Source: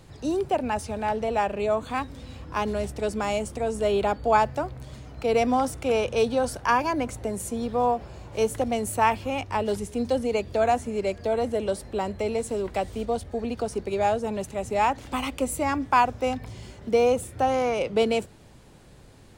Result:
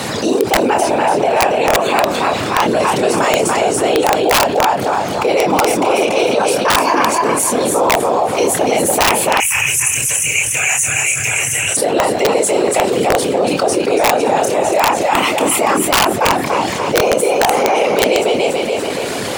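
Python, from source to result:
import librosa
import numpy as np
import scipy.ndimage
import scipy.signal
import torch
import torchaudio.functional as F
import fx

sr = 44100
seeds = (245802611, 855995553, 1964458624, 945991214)

y = fx.doubler(x, sr, ms=28.0, db=-5)
y = fx.echo_feedback(y, sr, ms=286, feedback_pct=31, wet_db=-5)
y = fx.whisperise(y, sr, seeds[0])
y = scipy.signal.sosfilt(scipy.signal.butter(4, 110.0, 'highpass', fs=sr, output='sos'), y)
y = fx.peak_eq(y, sr, hz=140.0, db=-13.0, octaves=2.0)
y = fx.rider(y, sr, range_db=3, speed_s=2.0)
y = fx.curve_eq(y, sr, hz=(140.0, 190.0, 670.0, 2600.0, 4300.0, 6100.0), db=(0, -26, -28, 7, -23, 12), at=(9.4, 11.77))
y = (np.mod(10.0 ** (13.0 / 20.0) * y + 1.0, 2.0) - 1.0) / 10.0 ** (13.0 / 20.0)
y = fx.env_flatten(y, sr, amount_pct=70)
y = y * librosa.db_to_amplitude(6.5)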